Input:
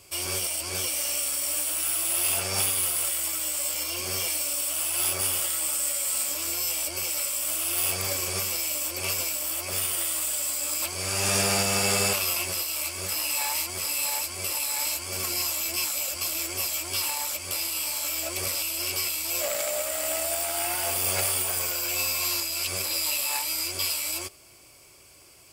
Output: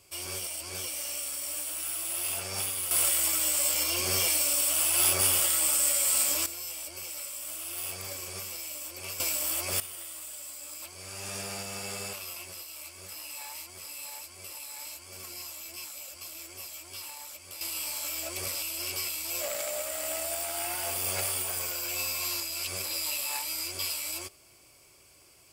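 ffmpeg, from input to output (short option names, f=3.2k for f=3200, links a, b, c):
-af "asetnsamples=n=441:p=0,asendcmd='2.91 volume volume 2dB;6.46 volume volume -10dB;9.2 volume volume -0.5dB;9.8 volume volume -13.5dB;17.61 volume volume -5dB',volume=-7dB"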